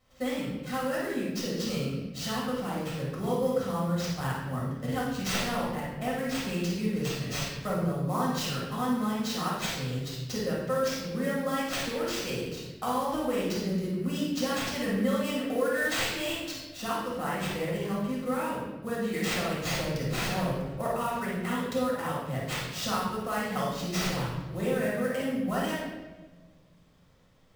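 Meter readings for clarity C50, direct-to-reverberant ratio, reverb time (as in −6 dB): −1.5 dB, −6.5 dB, 1.3 s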